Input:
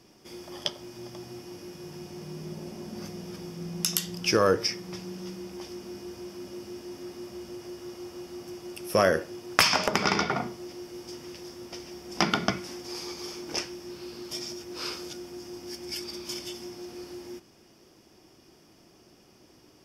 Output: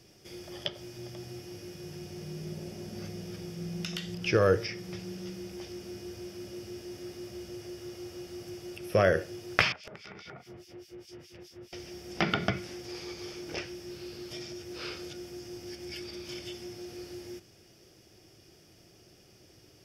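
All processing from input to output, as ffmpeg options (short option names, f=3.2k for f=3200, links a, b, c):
-filter_complex "[0:a]asettb=1/sr,asplit=3[a][b][c];[a]atrim=end=9.724[d];[b]atrim=start=9.72:end=11.73,asetpts=PTS-STARTPTS,afade=t=in:d=0.004:c=qsin,afade=t=out:st=2.006:d=0.004:c=qsin,acrossover=split=2500[e][f];[e]aeval=exprs='val(0)*(1-1/2+1/2*cos(2*PI*4.8*n/s))':c=same[g];[f]aeval=exprs='val(0)*(1-1/2-1/2*cos(2*PI*4.8*n/s))':c=same[h];[g][h]amix=inputs=2:normalize=0,bass=f=250:g=-1,treble=f=4k:g=-6,acompressor=threshold=-40dB:ratio=12:attack=3.2:release=140:knee=1:detection=peak[i];[c]atrim=start=11.726[j];[d][i]acrossfade=d=0.004:c1=hsin:c2=qsin[k];[k][j]acrossfade=d=0.004:c1=qsin:c2=hsin,acrossover=split=3600[l][m];[m]acompressor=threshold=-51dB:ratio=4:attack=1:release=60[n];[l][n]amix=inputs=2:normalize=0,equalizer=f=100:t=o:w=0.67:g=6,equalizer=f=250:t=o:w=0.67:g=-8,equalizer=f=1k:t=o:w=0.67:g=-11,volume=1dB"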